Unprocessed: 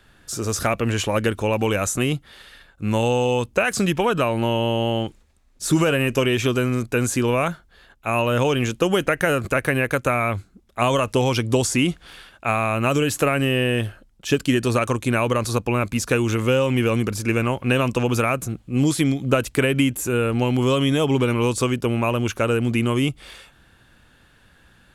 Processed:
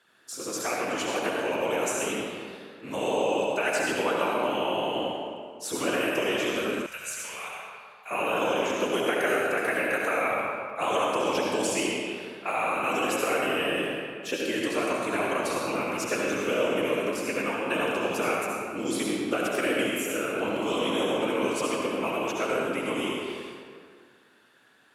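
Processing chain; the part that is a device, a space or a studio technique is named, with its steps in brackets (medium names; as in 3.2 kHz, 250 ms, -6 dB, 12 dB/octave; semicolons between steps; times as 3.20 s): whispering ghost (whisper effect; high-pass 360 Hz 12 dB/octave; reverberation RT60 2.0 s, pre-delay 61 ms, DRR -3 dB); 6.86–8.11 s: amplifier tone stack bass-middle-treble 10-0-10; trim -8.5 dB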